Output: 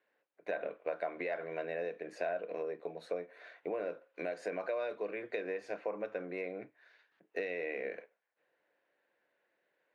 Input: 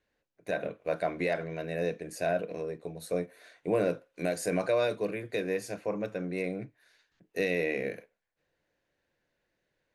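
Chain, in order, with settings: compressor 12:1, threshold -34 dBFS, peak gain reduction 12.5 dB; BPF 430–2400 Hz; gain +3.5 dB

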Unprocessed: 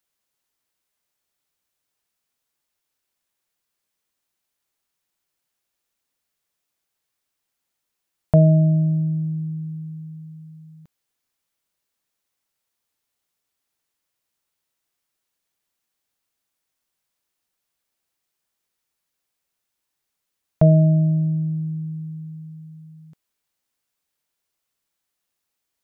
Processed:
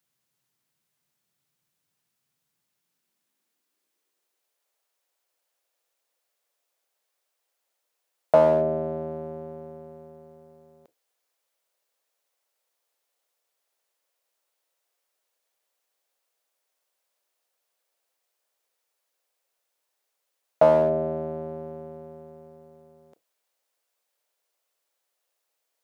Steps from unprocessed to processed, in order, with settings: octaver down 1 oct, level +1 dB; hard clip -7 dBFS, distortion -18 dB; high-pass sweep 140 Hz -> 530 Hz, 2.54–4.68

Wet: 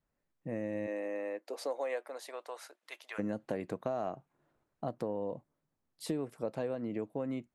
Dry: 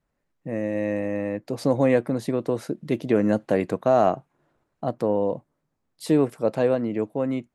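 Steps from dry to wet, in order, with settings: 0.86–3.18 HPF 290 Hz -> 1000 Hz 24 dB/oct; compressor 6:1, threshold -25 dBFS, peak gain reduction 11 dB; gain -7 dB

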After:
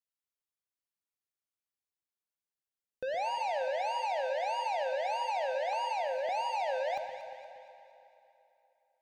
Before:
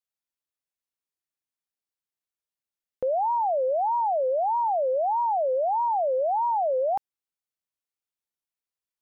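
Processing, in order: 5.73–6.29 HPF 580 Hz 24 dB/oct; sample leveller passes 1; soft clip -28 dBFS, distortion -15 dB; echo with dull and thin repeats by turns 0.117 s, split 1000 Hz, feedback 68%, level -8 dB; reverb RT60 3.3 s, pre-delay 3 ms, DRR 7 dB; gain -4.5 dB

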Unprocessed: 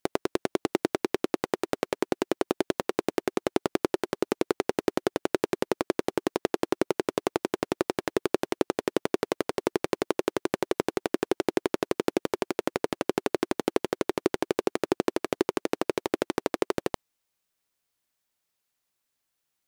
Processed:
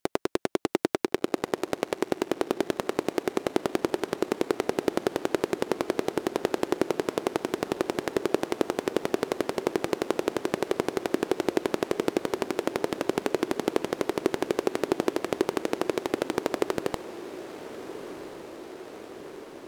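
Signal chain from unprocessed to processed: diffused feedback echo 1.392 s, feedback 73%, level -13.5 dB

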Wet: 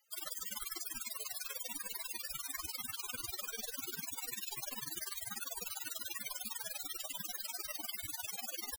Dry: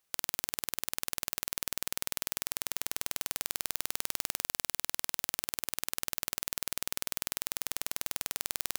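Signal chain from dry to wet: loudest bins only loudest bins 32; pitch shift +1 st; gain +13.5 dB

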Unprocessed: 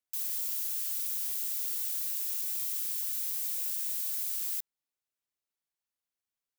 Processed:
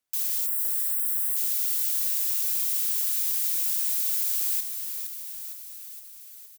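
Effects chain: spectral gain 0.46–1.36, 2100–7500 Hz -30 dB; on a send: frequency-shifting echo 0.463 s, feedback 62%, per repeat -37 Hz, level -8 dB; on the sum: gain +6.5 dB

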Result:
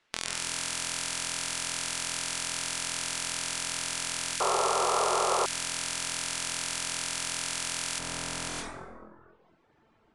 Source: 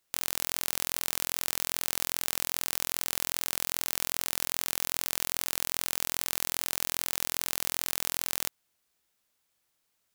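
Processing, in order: brick-wall FIR low-pass 11000 Hz; resonator 220 Hz, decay 0.52 s, harmonics all, mix 70%; low-pass opened by the level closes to 2300 Hz, open at -39.5 dBFS; reverb RT60 1.4 s, pre-delay 0.103 s, DRR -5.5 dB; reverb removal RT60 0.74 s; tilt shelf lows -5 dB, about 1100 Hz, from 7.98 s lows +5.5 dB; compressor 2:1, threshold -49 dBFS, peak gain reduction 7.5 dB; 4.4–5.46 painted sound noise 360–1400 Hz -26 dBFS; bell 320 Hz +3 dB; spectral compressor 2:1; gain +4.5 dB

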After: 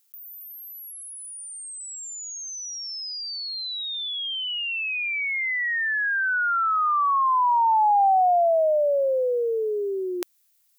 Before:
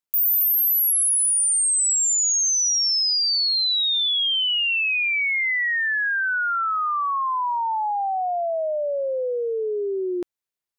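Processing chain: HPF 430 Hz; tilt +4.5 dB/oct; negative-ratio compressor -26 dBFS, ratio -1; gain -3 dB

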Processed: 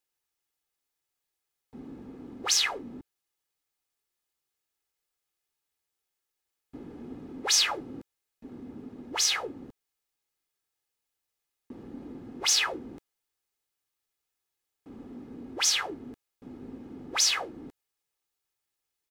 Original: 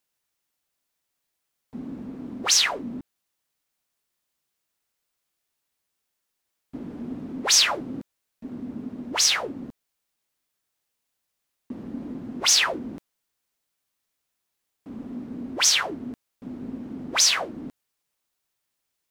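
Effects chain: comb 2.4 ms, depth 43%; gain -6 dB

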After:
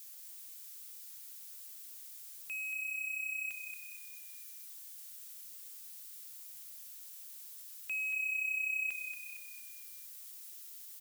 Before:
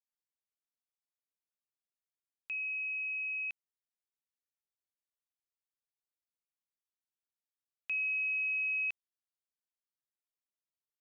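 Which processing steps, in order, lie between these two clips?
switching spikes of -39.5 dBFS; frequency-shifting echo 0.23 s, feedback 46%, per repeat -32 Hz, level -7 dB; gain -3 dB

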